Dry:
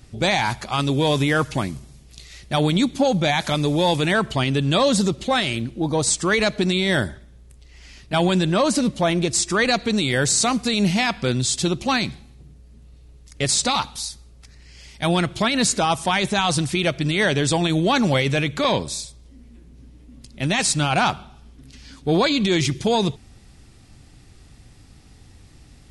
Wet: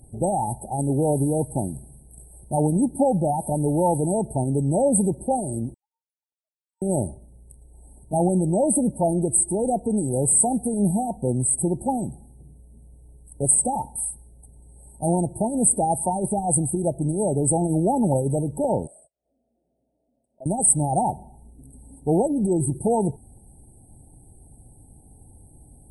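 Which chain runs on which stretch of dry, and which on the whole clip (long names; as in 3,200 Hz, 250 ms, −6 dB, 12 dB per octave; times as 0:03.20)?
0:05.74–0:06.82: three sine waves on the formant tracks + Butterworth high-pass 2,900 Hz + compressor whose output falls as the input rises −45 dBFS
0:18.87–0:20.46: noise gate −36 dBFS, range −41 dB + pair of resonant band-passes 1,100 Hz, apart 1.5 octaves + upward compression, threshold −39 dBFS
whole clip: brick-wall band-stop 920–8,000 Hz; parametric band 6,500 Hz +11.5 dB 2.5 octaves; level −1.5 dB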